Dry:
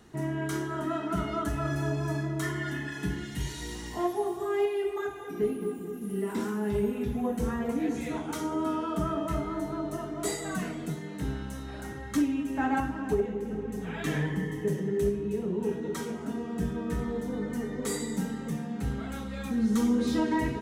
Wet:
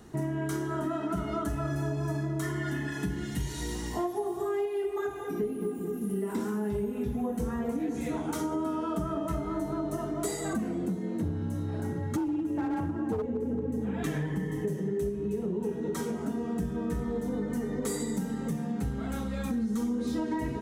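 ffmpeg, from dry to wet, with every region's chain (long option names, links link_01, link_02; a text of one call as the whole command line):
ffmpeg -i in.wav -filter_complex "[0:a]asettb=1/sr,asplit=3[link_01][link_02][link_03];[link_01]atrim=end=10.534[link_04];[link_02]atrim=start=10.53:end=14.03,asetpts=PTS-STARTPTS,afade=type=in:duration=0.004:curve=qsin,afade=type=out:start_time=3.496:duration=0.004:curve=qsin,tiltshelf=frequency=630:gain=5.5,asoftclip=type=hard:threshold=-23dB,afreqshift=30[link_05];[link_03]atrim=start=14.026[link_06];[link_04][link_05]acrossfade=duration=0.004:curve1=hsin:curve2=qsin[link_07];[link_07][link_06]acrossfade=duration=0.004:curve1=qsin:curve2=hsin,equalizer=frequency=2700:width_type=o:width=2.2:gain=-5.5,acompressor=threshold=-33dB:ratio=6,volume=5dB" out.wav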